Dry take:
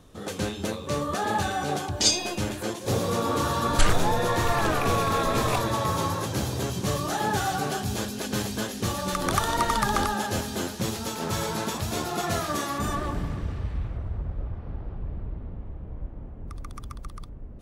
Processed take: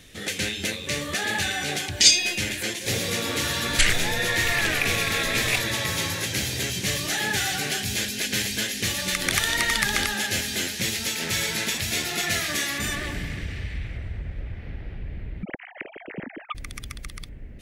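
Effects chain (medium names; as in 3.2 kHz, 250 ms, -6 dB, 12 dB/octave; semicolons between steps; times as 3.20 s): 15.43–16.55 s: formants replaced by sine waves; resonant high shelf 1.5 kHz +10 dB, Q 3; in parallel at 0 dB: compression, threshold -31 dBFS, peak gain reduction 23 dB; on the sum: trim -5.5 dB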